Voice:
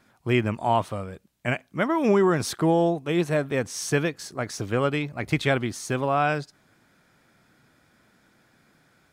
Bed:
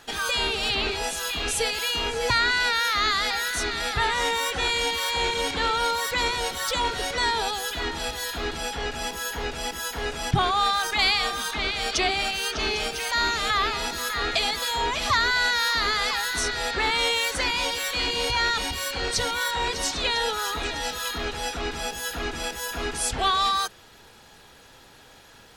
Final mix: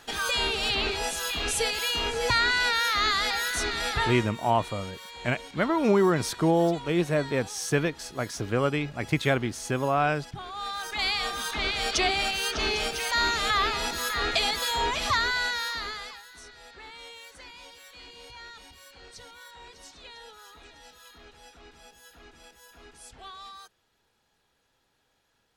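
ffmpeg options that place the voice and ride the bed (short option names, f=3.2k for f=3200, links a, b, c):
-filter_complex "[0:a]adelay=3800,volume=-1.5dB[a];[1:a]volume=15dB,afade=t=out:st=3.97:d=0.3:silence=0.158489,afade=t=in:st=10.45:d=1.28:silence=0.149624,afade=t=out:st=14.83:d=1.4:silence=0.0944061[b];[a][b]amix=inputs=2:normalize=0"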